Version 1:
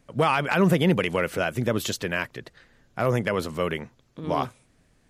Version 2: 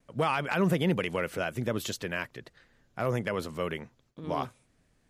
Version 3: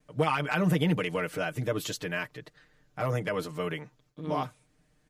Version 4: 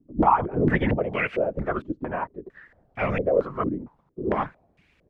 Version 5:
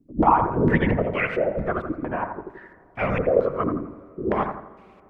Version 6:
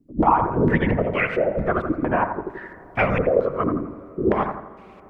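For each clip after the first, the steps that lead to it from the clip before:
gate with hold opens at -54 dBFS; gain -6 dB
comb 6.6 ms, depth 88%; gain -2 dB
added noise blue -61 dBFS; whisperiser; stepped low-pass 4.4 Hz 290–2400 Hz; gain +2 dB
analogue delay 84 ms, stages 1024, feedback 39%, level -6.5 dB; on a send at -21.5 dB: reverb RT60 3.3 s, pre-delay 97 ms; on the sum: gain +1 dB
recorder AGC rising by 7.6 dB/s

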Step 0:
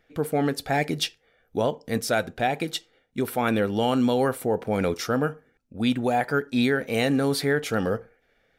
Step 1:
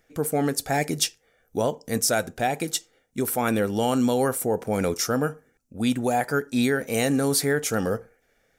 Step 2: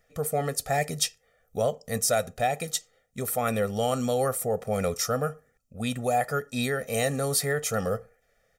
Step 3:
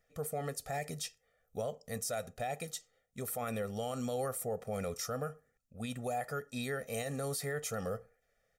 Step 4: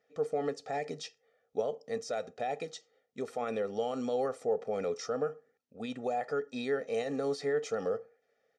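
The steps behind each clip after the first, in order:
resonant high shelf 5000 Hz +9 dB, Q 1.5
comb 1.6 ms, depth 82%; gain -4.5 dB
limiter -19 dBFS, peak gain reduction 9.5 dB; gain -8.5 dB
speaker cabinet 210–5800 Hz, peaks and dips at 290 Hz +10 dB, 440 Hz +9 dB, 840 Hz +5 dB

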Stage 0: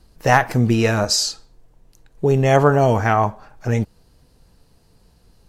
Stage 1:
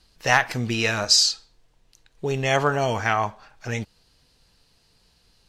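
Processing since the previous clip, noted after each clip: bell 3600 Hz +15 dB 2.9 oct; gain -10.5 dB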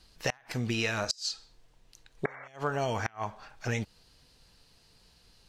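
compressor 5:1, threshold -27 dBFS, peak gain reduction 13.5 dB; painted sound noise, 2.25–2.48, 470–2300 Hz -19 dBFS; flipped gate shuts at -15 dBFS, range -28 dB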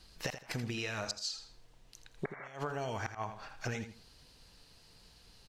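compressor 10:1, threshold -35 dBFS, peak gain reduction 11 dB; on a send: feedback echo 82 ms, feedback 25%, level -10 dB; on the sum: gain +1 dB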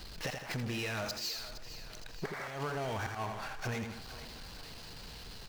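median filter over 5 samples; power-law curve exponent 0.5; thinning echo 0.464 s, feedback 54%, high-pass 400 Hz, level -12.5 dB; gain -5 dB

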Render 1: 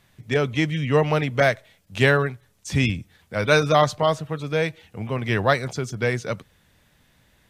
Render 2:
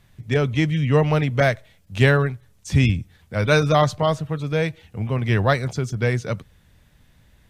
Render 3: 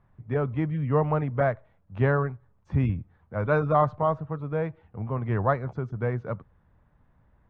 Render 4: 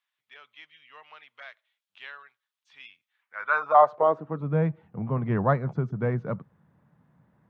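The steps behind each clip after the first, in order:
low shelf 140 Hz +12 dB; gain -1 dB
synth low-pass 1100 Hz, resonance Q 1.9; gain -7 dB
high-pass sweep 3300 Hz -> 160 Hz, 3.07–4.5

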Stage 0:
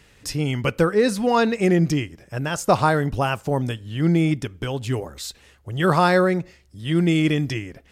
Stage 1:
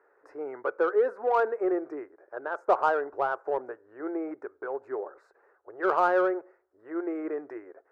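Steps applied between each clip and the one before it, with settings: elliptic band-pass 380–1500 Hz, stop band 40 dB; in parallel at -6.5 dB: soft clip -21.5 dBFS, distortion -8 dB; on the sum: gain -6 dB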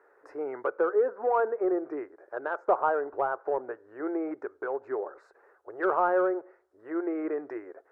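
treble ducked by the level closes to 1500 Hz, closed at -25 dBFS; in parallel at -1 dB: compressor, threshold -33 dBFS, peak gain reduction 14.5 dB; on the sum: gain -2.5 dB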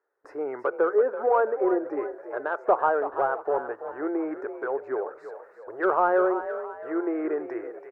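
gate with hold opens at -50 dBFS; on a send: frequency-shifting echo 0.332 s, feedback 43%, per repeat +41 Hz, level -11 dB; on the sum: gain +3 dB

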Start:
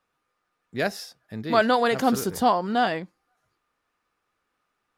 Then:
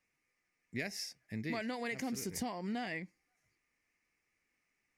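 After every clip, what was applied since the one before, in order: EQ curve 270 Hz 0 dB, 500 Hz -6 dB, 900 Hz -8 dB, 1400 Hz -12 dB, 2100 Hz +11 dB, 3500 Hz -8 dB, 5600 Hz +6 dB, 15000 Hz -2 dB; compressor 12:1, threshold -30 dBFS, peak gain reduction 12 dB; gain -4.5 dB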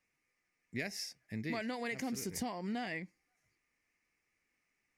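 nothing audible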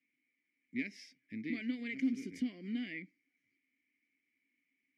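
vowel filter i; gain +9.5 dB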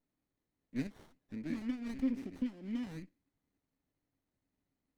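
running maximum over 17 samples

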